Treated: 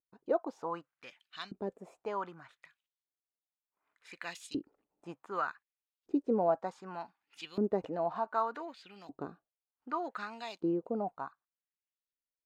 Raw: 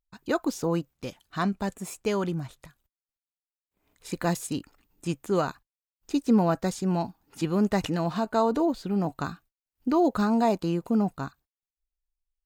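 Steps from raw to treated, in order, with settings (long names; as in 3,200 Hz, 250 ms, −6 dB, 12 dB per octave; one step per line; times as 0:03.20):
auto-filter band-pass saw up 0.66 Hz 330–3,900 Hz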